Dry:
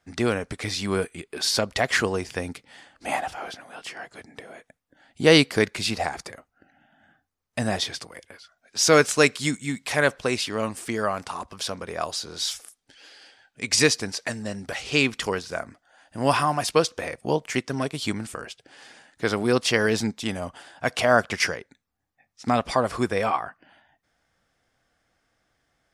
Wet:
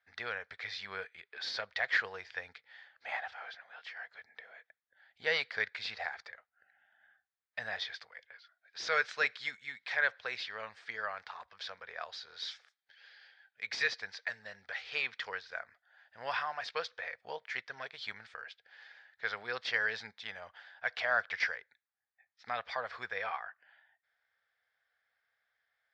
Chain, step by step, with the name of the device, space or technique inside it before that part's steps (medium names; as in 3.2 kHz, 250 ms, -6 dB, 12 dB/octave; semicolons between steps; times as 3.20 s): amplifier tone stack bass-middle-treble 10-0-10; overdrive pedal into a guitar cabinet (overdrive pedal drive 14 dB, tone 2.3 kHz, clips at -4 dBFS; cabinet simulation 100–4100 Hz, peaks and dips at 150 Hz -9 dB, 470 Hz +5 dB, 1.1 kHz -5 dB, 1.7 kHz +5 dB, 2.8 kHz -8 dB); trim -8.5 dB